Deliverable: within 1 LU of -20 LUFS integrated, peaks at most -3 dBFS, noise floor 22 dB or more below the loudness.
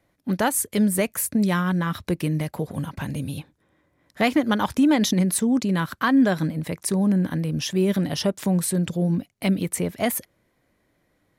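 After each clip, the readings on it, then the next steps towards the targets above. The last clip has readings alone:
loudness -23.0 LUFS; peak level -9.0 dBFS; loudness target -20.0 LUFS
-> trim +3 dB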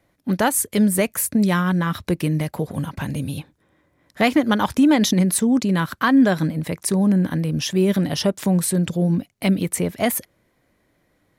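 loudness -20.0 LUFS; peak level -6.0 dBFS; noise floor -66 dBFS

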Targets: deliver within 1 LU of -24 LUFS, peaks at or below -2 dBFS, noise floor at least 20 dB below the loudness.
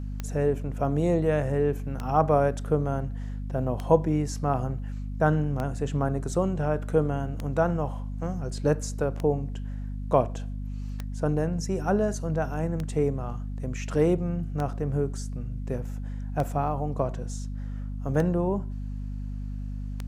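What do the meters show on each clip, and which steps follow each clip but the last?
clicks found 12; hum 50 Hz; highest harmonic 250 Hz; hum level -31 dBFS; loudness -28.0 LUFS; peak level -6.0 dBFS; loudness target -24.0 LUFS
-> de-click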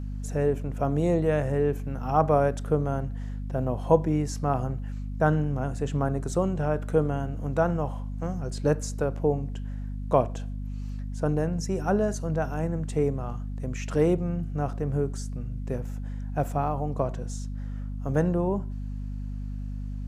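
clicks found 0; hum 50 Hz; highest harmonic 250 Hz; hum level -31 dBFS
-> de-hum 50 Hz, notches 5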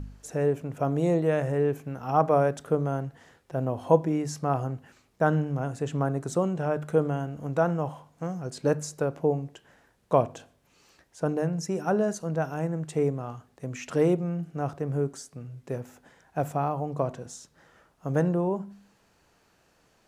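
hum not found; loudness -28.0 LUFS; peak level -6.5 dBFS; loudness target -24.0 LUFS
-> trim +4 dB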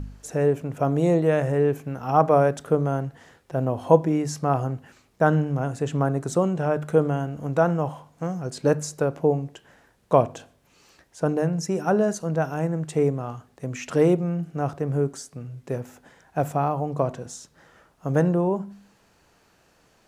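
loudness -24.0 LUFS; peak level -2.5 dBFS; noise floor -62 dBFS

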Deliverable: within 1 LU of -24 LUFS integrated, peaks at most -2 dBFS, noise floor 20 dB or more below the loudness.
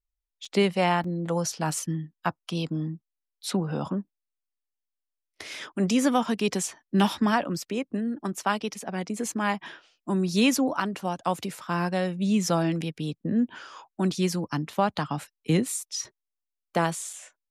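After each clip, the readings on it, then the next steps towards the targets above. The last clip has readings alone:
dropouts 3; longest dropout 3.8 ms; loudness -27.5 LUFS; peak level -10.5 dBFS; loudness target -24.0 LUFS
-> interpolate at 0.45/1.04/17.13 s, 3.8 ms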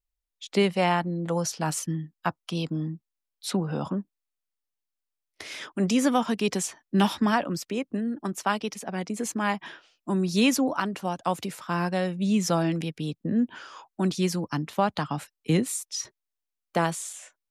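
dropouts 0; loudness -27.5 LUFS; peak level -10.5 dBFS; loudness target -24.0 LUFS
-> trim +3.5 dB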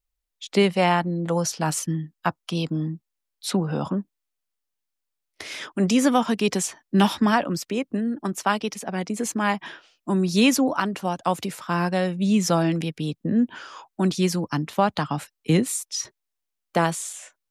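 loudness -24.0 LUFS; peak level -6.5 dBFS; noise floor -82 dBFS

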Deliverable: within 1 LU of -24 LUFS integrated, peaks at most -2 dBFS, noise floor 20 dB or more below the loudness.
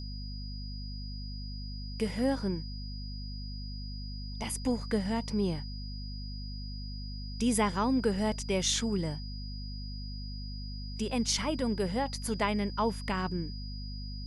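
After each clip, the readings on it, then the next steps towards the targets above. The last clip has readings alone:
hum 50 Hz; highest harmonic 250 Hz; hum level -37 dBFS; steady tone 4.9 kHz; tone level -46 dBFS; loudness -34.0 LUFS; peak level -16.0 dBFS; loudness target -24.0 LUFS
-> de-hum 50 Hz, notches 5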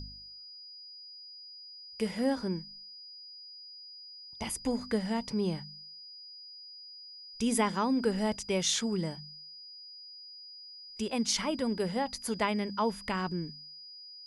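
hum not found; steady tone 4.9 kHz; tone level -46 dBFS
-> band-stop 4.9 kHz, Q 30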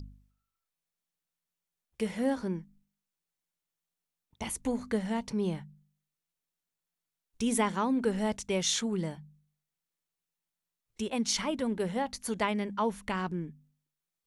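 steady tone not found; loudness -32.0 LUFS; peak level -15.5 dBFS; loudness target -24.0 LUFS
-> trim +8 dB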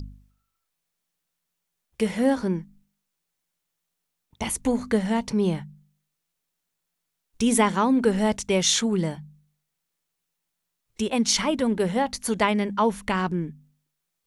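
loudness -24.0 LUFS; peak level -7.5 dBFS; noise floor -81 dBFS

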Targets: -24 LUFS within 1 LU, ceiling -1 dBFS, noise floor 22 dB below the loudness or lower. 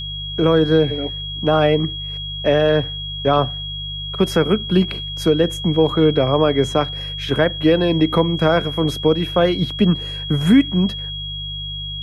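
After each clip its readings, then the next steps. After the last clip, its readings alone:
hum 50 Hz; highest harmonic 150 Hz; hum level -29 dBFS; steady tone 3.3 kHz; tone level -27 dBFS; loudness -18.5 LUFS; peak level -4.0 dBFS; loudness target -24.0 LUFS
-> de-hum 50 Hz, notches 3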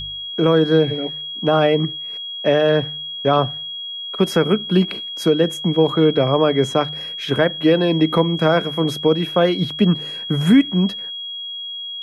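hum not found; steady tone 3.3 kHz; tone level -27 dBFS
-> band-stop 3.3 kHz, Q 30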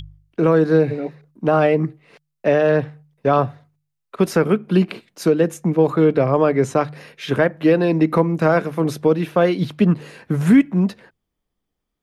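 steady tone not found; loudness -18.5 LUFS; peak level -4.5 dBFS; loudness target -24.0 LUFS
-> trim -5.5 dB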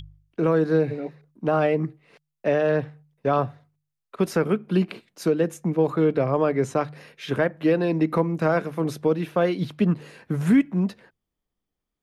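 loudness -24.0 LUFS; peak level -10.0 dBFS; noise floor -83 dBFS

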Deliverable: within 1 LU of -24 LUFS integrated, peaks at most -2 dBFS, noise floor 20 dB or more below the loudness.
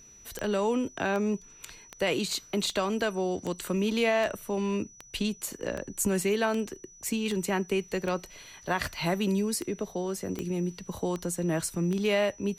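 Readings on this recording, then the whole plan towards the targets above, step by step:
clicks found 16; steady tone 5.9 kHz; tone level -51 dBFS; loudness -30.0 LUFS; peak level -15.5 dBFS; loudness target -24.0 LUFS
-> de-click; band-stop 5.9 kHz, Q 30; trim +6 dB

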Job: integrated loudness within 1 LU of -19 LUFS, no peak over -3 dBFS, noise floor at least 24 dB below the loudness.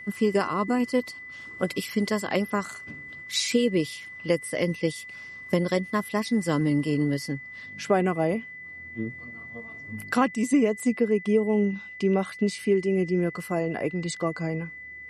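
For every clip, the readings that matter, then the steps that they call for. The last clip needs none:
steady tone 2 kHz; tone level -39 dBFS; loudness -26.5 LUFS; peak level -8.5 dBFS; loudness target -19.0 LUFS
-> band-stop 2 kHz, Q 30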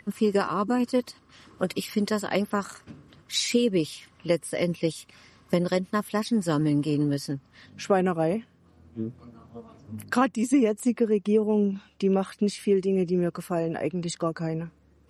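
steady tone not found; loudness -26.5 LUFS; peak level -8.5 dBFS; loudness target -19.0 LUFS
-> trim +7.5 dB; peak limiter -3 dBFS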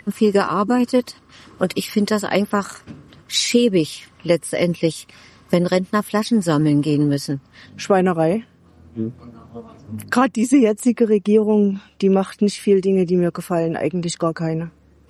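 loudness -19.0 LUFS; peak level -3.0 dBFS; noise floor -52 dBFS

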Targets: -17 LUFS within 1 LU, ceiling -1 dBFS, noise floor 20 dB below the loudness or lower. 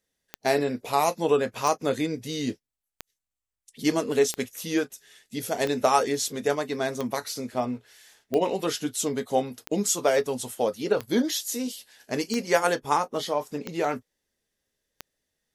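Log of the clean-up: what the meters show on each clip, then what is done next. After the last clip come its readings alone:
clicks found 12; loudness -27.0 LUFS; peak level -7.0 dBFS; loudness target -17.0 LUFS
-> de-click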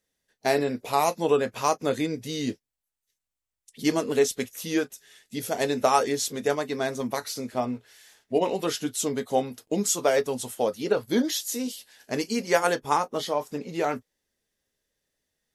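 clicks found 0; loudness -27.0 LUFS; peak level -7.0 dBFS; loudness target -17.0 LUFS
-> trim +10 dB; peak limiter -1 dBFS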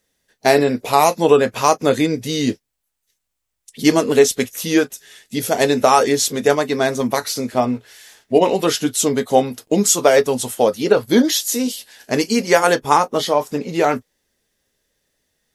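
loudness -17.0 LUFS; peak level -1.0 dBFS; noise floor -77 dBFS

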